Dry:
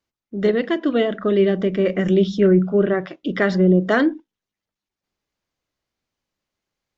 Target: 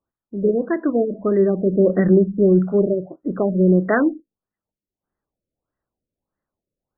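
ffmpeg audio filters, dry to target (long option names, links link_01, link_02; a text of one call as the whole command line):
ffmpeg -i in.wav -filter_complex "[0:a]asplit=3[link_01][link_02][link_03];[link_01]afade=type=out:start_time=1.66:duration=0.02[link_04];[link_02]equalizer=frequency=250:width=0.3:gain=4,afade=type=in:start_time=1.66:duration=0.02,afade=type=out:start_time=2.17:duration=0.02[link_05];[link_03]afade=type=in:start_time=2.17:duration=0.02[link_06];[link_04][link_05][link_06]amix=inputs=3:normalize=0,afftfilt=real='re*lt(b*sr/1024,600*pow(2100/600,0.5+0.5*sin(2*PI*1.6*pts/sr)))':imag='im*lt(b*sr/1024,600*pow(2100/600,0.5+0.5*sin(2*PI*1.6*pts/sr)))':win_size=1024:overlap=0.75" out.wav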